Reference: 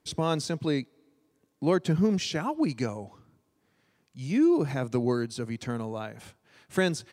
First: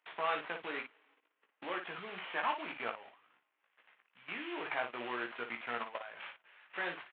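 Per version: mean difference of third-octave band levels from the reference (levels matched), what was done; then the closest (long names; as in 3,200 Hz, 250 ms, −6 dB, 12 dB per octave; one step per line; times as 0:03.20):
12.5 dB: variable-slope delta modulation 16 kbit/s
output level in coarse steps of 17 dB
high-pass filter 1,000 Hz 12 dB per octave
on a send: ambience of single reflections 17 ms −4.5 dB, 57 ms −7.5 dB
on the sum: level +7 dB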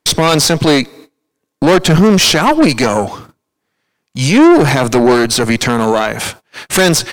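7.5 dB: noise gate −57 dBFS, range −27 dB
low-shelf EQ 380 Hz −9.5 dB
tube saturation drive 32 dB, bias 0.65
boost into a limiter +34.5 dB
level −1 dB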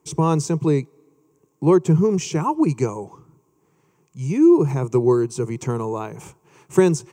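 4.5 dB: EQ curve with evenly spaced ripples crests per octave 0.72, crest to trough 12 dB
in parallel at −2 dB: speech leveller within 5 dB 0.5 s
on the sum: high-pass filter 77 Hz
parametric band 3,000 Hz −12 dB 1.3 octaves
level +1.5 dB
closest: third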